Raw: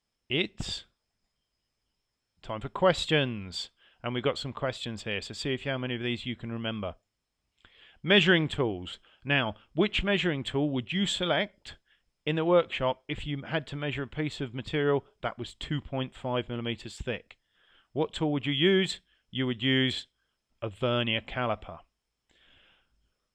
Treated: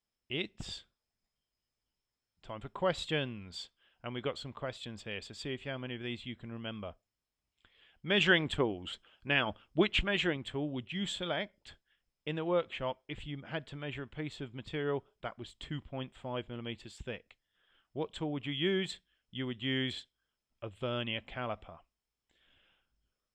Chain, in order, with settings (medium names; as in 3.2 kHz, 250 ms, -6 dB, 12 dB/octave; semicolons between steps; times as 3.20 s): 8.20–10.37 s: harmonic-percussive split percussive +7 dB; trim -8 dB